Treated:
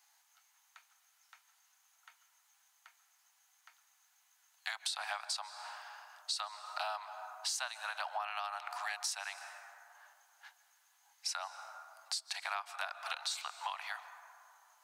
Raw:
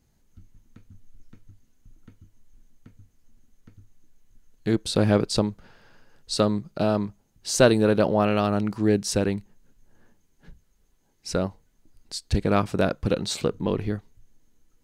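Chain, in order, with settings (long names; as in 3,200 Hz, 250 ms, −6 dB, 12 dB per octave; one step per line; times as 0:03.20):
Butterworth high-pass 740 Hz 72 dB per octave
dense smooth reverb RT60 2.6 s, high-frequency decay 0.35×, pre-delay 115 ms, DRR 16 dB
downward compressor 16 to 1, threshold −41 dBFS, peak gain reduction 22 dB
level +6 dB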